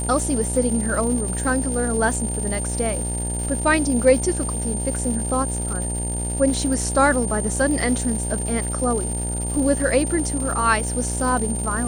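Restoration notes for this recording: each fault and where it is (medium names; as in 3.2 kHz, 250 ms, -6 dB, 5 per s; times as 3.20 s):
buzz 60 Hz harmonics 16 -27 dBFS
crackle 290 per s -29 dBFS
whine 9 kHz -27 dBFS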